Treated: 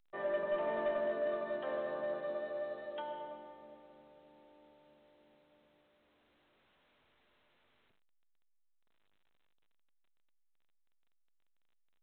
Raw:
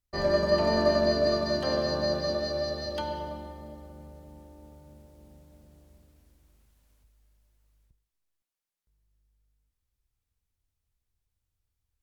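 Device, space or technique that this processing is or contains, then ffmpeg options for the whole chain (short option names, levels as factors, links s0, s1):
telephone: -af "highpass=390,lowpass=3200,asoftclip=type=tanh:threshold=0.1,volume=0.422" -ar 8000 -c:a pcm_alaw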